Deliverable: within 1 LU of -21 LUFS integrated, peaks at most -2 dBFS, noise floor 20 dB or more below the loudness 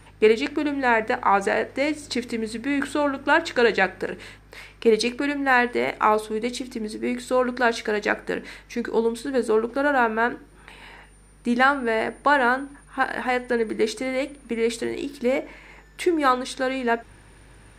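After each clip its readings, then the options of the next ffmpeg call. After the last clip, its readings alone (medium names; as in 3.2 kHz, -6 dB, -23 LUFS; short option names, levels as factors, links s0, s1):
hum 50 Hz; highest harmonic 150 Hz; hum level -49 dBFS; loudness -23.5 LUFS; peak level -5.5 dBFS; loudness target -21.0 LUFS
-> -af "bandreject=f=50:t=h:w=4,bandreject=f=100:t=h:w=4,bandreject=f=150:t=h:w=4"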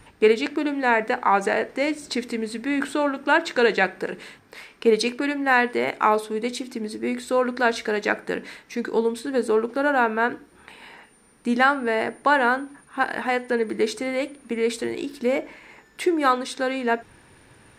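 hum not found; loudness -23.5 LUFS; peak level -5.5 dBFS; loudness target -21.0 LUFS
-> -af "volume=1.33"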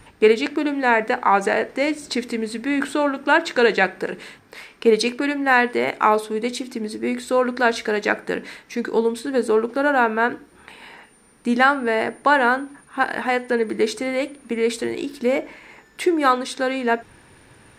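loudness -21.0 LUFS; peak level -3.0 dBFS; noise floor -53 dBFS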